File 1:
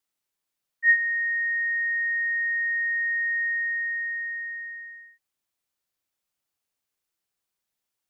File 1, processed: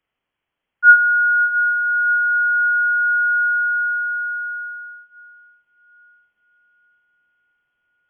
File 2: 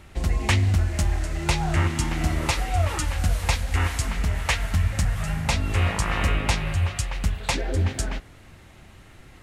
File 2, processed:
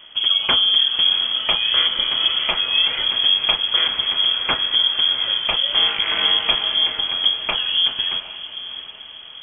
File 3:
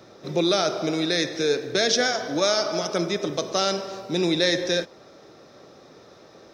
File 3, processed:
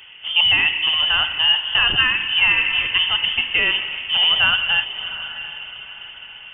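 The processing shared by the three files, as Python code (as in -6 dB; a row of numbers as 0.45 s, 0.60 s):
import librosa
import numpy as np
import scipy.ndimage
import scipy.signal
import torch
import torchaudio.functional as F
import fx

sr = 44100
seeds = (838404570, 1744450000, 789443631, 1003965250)

y = fx.echo_diffused(x, sr, ms=705, feedback_pct=44, wet_db=-12.5)
y = fx.freq_invert(y, sr, carrier_hz=3300)
y = y * 10.0 ** (-20 / 20.0) / np.sqrt(np.mean(np.square(y)))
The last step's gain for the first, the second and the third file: +10.5 dB, +2.5 dB, +6.0 dB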